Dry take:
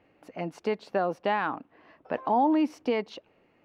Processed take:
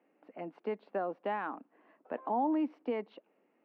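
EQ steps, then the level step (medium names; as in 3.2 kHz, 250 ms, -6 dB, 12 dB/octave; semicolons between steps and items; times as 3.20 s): steep high-pass 200 Hz 36 dB/octave; distance through air 470 m; -6.0 dB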